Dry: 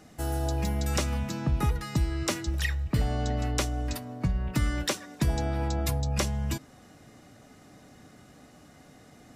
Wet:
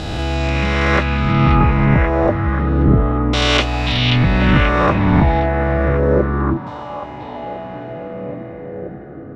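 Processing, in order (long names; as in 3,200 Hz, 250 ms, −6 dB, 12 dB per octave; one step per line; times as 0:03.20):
peak hold with a rise ahead of every peak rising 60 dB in 2.30 s
auto-filter low-pass saw down 0.3 Hz 320–3,700 Hz
echo through a band-pass that steps 532 ms, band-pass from 3,200 Hz, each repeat −0.7 octaves, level −1 dB
level +8.5 dB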